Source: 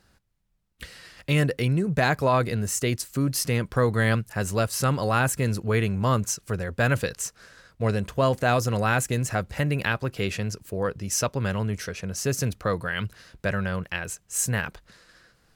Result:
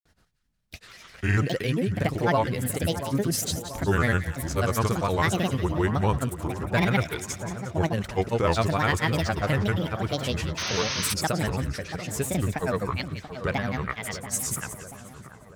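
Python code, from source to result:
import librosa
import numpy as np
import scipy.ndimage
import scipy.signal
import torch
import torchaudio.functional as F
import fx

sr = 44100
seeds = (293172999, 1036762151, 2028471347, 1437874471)

y = fx.granulator(x, sr, seeds[0], grain_ms=100.0, per_s=20.0, spray_ms=100.0, spread_st=7)
y = fx.echo_split(y, sr, split_hz=1500.0, low_ms=684, high_ms=178, feedback_pct=52, wet_db=-11.0)
y = fx.spec_paint(y, sr, seeds[1], shape='noise', start_s=10.57, length_s=0.57, low_hz=890.0, high_hz=6500.0, level_db=-30.0)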